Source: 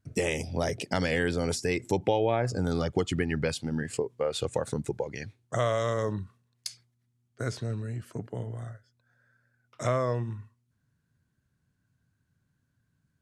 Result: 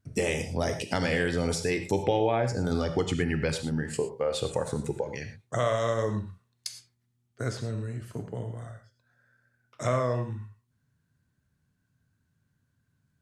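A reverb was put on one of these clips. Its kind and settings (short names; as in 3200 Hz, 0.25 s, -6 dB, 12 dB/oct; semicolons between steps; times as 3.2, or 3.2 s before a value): non-linear reverb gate 0.14 s flat, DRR 6.5 dB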